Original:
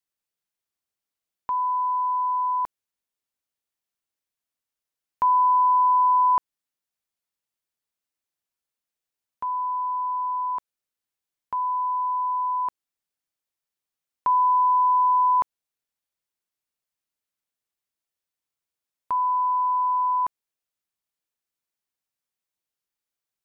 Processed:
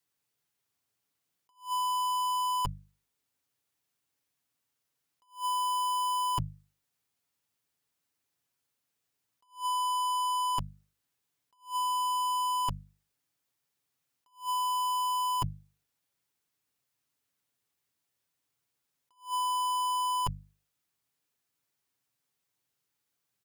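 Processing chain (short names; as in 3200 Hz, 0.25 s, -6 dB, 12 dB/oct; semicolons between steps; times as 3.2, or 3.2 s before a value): HPF 73 Hz 24 dB/oct; sample leveller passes 5; low shelf 160 Hz +10 dB; hard clip -25.5 dBFS, distortion -13 dB; notches 50/100/150/200 Hz; comb 7.1 ms, depth 36%; negative-ratio compressor -34 dBFS, ratio -1; notch 610 Hz, Q 12; attack slew limiter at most 220 dB/s; gain +4.5 dB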